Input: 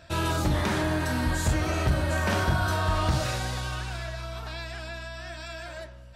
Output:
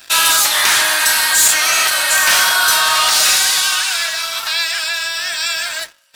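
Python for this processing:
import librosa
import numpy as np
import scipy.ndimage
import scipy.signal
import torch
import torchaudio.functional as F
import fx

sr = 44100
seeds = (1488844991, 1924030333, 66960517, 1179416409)

y = scipy.signal.sosfilt(scipy.signal.butter(2, 1100.0, 'highpass', fs=sr, output='sos'), x)
y = fx.tilt_eq(y, sr, slope=4.0)
y = fx.leveller(y, sr, passes=3)
y = y * librosa.db_to_amplitude(5.5)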